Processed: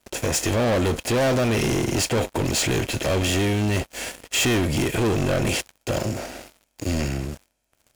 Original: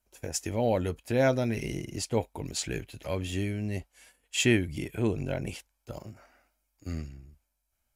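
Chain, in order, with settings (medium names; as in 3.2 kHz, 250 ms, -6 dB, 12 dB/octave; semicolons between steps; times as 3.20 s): spectral levelling over time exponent 0.6; waveshaping leveller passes 5; 6.04–7.00 s: dynamic bell 1.5 kHz, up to -5 dB, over -38 dBFS, Q 0.8; trim -6.5 dB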